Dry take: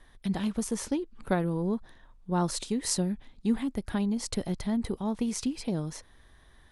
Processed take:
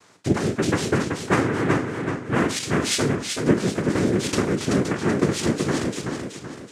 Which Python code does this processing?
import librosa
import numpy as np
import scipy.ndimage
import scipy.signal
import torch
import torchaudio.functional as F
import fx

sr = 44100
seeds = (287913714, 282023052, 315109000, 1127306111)

y = fx.spec_trails(x, sr, decay_s=0.31)
y = fx.noise_vocoder(y, sr, seeds[0], bands=3)
y = fx.echo_warbled(y, sr, ms=379, feedback_pct=42, rate_hz=2.8, cents=66, wet_db=-5)
y = y * 10.0 ** (6.5 / 20.0)